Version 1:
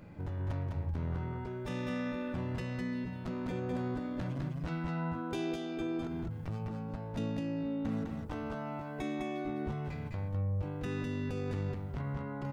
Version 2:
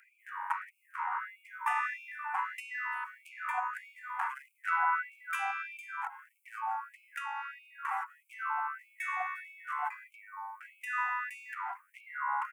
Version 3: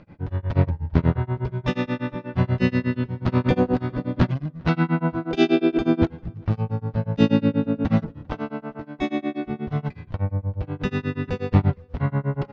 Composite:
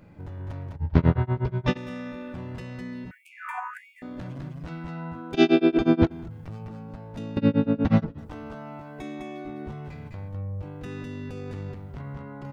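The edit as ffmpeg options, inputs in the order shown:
-filter_complex "[2:a]asplit=3[a][b][c];[0:a]asplit=5[d][e][f][g][h];[d]atrim=end=0.762[i];[a]atrim=start=0.758:end=1.772[j];[e]atrim=start=1.768:end=3.112[k];[1:a]atrim=start=3.108:end=4.022[l];[f]atrim=start=4.018:end=5.342[m];[b]atrim=start=5.338:end=6.112[n];[g]atrim=start=6.108:end=7.372[o];[c]atrim=start=7.368:end=8.182[p];[h]atrim=start=8.178[q];[i][j]acrossfade=d=0.004:c1=hsin:c2=hsin[r];[r][k]acrossfade=d=0.004:c1=hsin:c2=hsin[s];[s][l]acrossfade=d=0.004:c1=hsin:c2=hsin[t];[t][m]acrossfade=d=0.004:c1=hsin:c2=hsin[u];[u][n]acrossfade=d=0.004:c1=hsin:c2=hsin[v];[v][o]acrossfade=d=0.004:c1=hsin:c2=hsin[w];[w][p]acrossfade=d=0.004:c1=hsin:c2=hsin[x];[x][q]acrossfade=d=0.004:c1=hsin:c2=hsin"

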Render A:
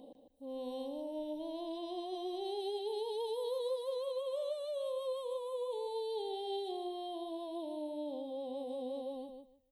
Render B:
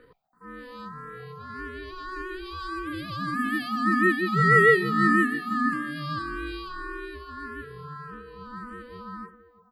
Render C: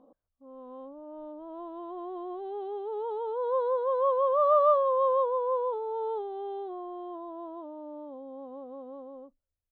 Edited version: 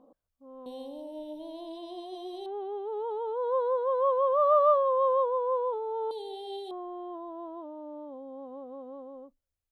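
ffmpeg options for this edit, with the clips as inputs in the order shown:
-filter_complex "[0:a]asplit=2[a][b];[2:a]asplit=3[c][d][e];[c]atrim=end=0.662[f];[a]atrim=start=0.658:end=2.462[g];[d]atrim=start=2.458:end=6.112[h];[b]atrim=start=6.108:end=6.712[i];[e]atrim=start=6.708[j];[f][g]acrossfade=d=0.004:c1=hsin:c2=hsin[k];[k][h]acrossfade=d=0.004:c1=hsin:c2=hsin[l];[l][i]acrossfade=d=0.004:c1=hsin:c2=hsin[m];[m][j]acrossfade=d=0.004:c1=hsin:c2=hsin"

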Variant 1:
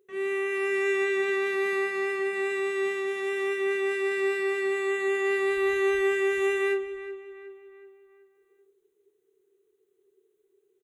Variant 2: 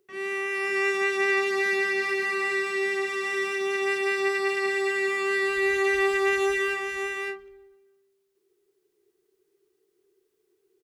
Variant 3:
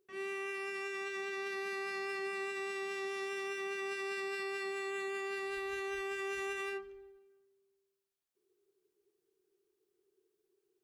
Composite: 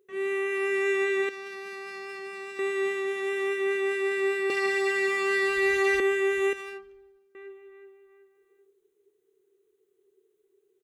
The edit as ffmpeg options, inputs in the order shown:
-filter_complex "[2:a]asplit=2[a][b];[0:a]asplit=4[c][d][e][f];[c]atrim=end=1.292[g];[a]atrim=start=1.288:end=2.592[h];[d]atrim=start=2.588:end=4.502[i];[1:a]atrim=start=4.498:end=6.002[j];[e]atrim=start=5.998:end=6.532[k];[b]atrim=start=6.528:end=7.352[l];[f]atrim=start=7.348[m];[g][h]acrossfade=d=0.004:c1=hsin:c2=hsin[n];[n][i]acrossfade=d=0.004:c1=hsin:c2=hsin[o];[o][j]acrossfade=d=0.004:c1=hsin:c2=hsin[p];[p][k]acrossfade=d=0.004:c1=hsin:c2=hsin[q];[q][l]acrossfade=d=0.004:c1=hsin:c2=hsin[r];[r][m]acrossfade=d=0.004:c1=hsin:c2=hsin"

